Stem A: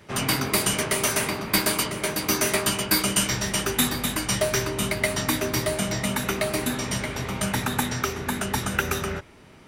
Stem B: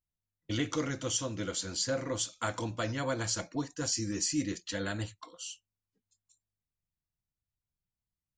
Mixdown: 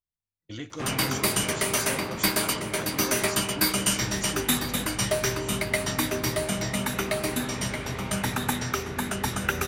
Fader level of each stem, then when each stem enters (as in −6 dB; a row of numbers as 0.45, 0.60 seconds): −2.0, −5.5 decibels; 0.70, 0.00 seconds